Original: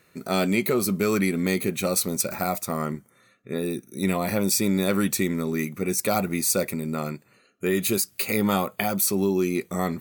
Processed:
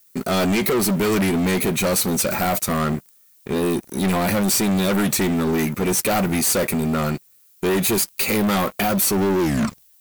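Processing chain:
turntable brake at the end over 0.61 s
leveller curve on the samples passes 5
background noise violet −48 dBFS
level −6.5 dB

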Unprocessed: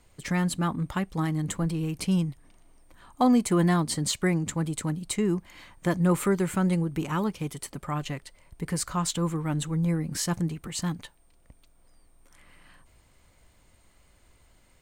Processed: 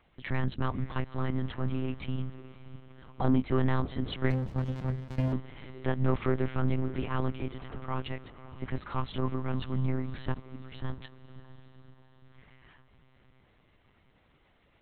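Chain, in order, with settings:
de-essing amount 55%
high-pass filter 83 Hz 12 dB per octave
0:02.04–0:03.24: downward compressor 2 to 1, threshold −33 dBFS, peak gain reduction 8 dB
soft clipping −16.5 dBFS, distortion −20 dB
0:10.40–0:10.98: fade in
feedback delay with all-pass diffusion 579 ms, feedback 53%, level −15 dB
one-pitch LPC vocoder at 8 kHz 130 Hz
0:04.30–0:05.33: windowed peak hold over 65 samples
level −1.5 dB

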